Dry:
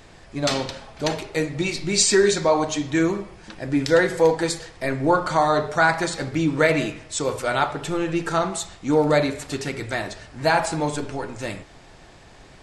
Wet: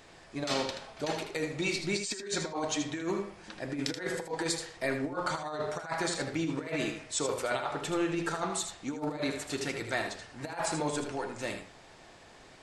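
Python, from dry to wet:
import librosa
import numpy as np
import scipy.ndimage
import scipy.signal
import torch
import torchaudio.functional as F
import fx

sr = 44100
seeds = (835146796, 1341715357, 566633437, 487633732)

y = fx.low_shelf(x, sr, hz=150.0, db=-11.0)
y = fx.over_compress(y, sr, threshold_db=-24.0, ratio=-0.5)
y = y + 10.0 ** (-8.0 / 20.0) * np.pad(y, (int(79 * sr / 1000.0), 0))[:len(y)]
y = F.gain(torch.from_numpy(y), -8.0).numpy()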